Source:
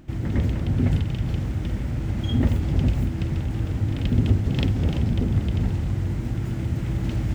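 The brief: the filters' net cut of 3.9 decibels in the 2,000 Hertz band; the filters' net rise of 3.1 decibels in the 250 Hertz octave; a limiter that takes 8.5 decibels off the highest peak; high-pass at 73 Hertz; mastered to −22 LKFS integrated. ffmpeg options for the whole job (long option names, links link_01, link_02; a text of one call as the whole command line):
ffmpeg -i in.wav -af "highpass=73,equalizer=frequency=250:width_type=o:gain=4,equalizer=frequency=2000:width_type=o:gain=-5,volume=4dB,alimiter=limit=-12dB:level=0:latency=1" out.wav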